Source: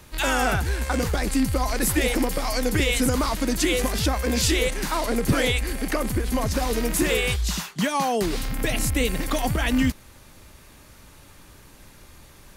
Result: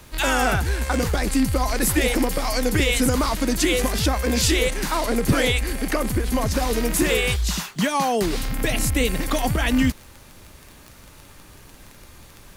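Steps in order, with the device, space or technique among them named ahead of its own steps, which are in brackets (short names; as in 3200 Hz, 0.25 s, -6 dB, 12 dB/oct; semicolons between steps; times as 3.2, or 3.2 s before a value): vinyl LP (crackle 22/s -31 dBFS; pink noise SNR 35 dB); gain +2 dB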